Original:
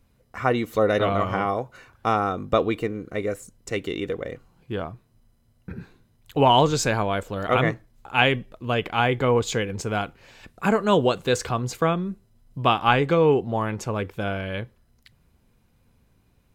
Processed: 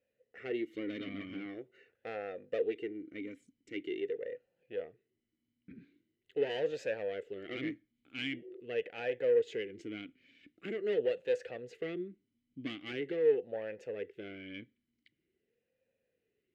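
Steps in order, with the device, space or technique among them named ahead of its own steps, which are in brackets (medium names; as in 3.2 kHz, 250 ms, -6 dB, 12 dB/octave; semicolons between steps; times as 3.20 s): spectral replace 8.23–8.59 s, 340–760 Hz both; talk box (valve stage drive 18 dB, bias 0.5; talking filter e-i 0.44 Hz)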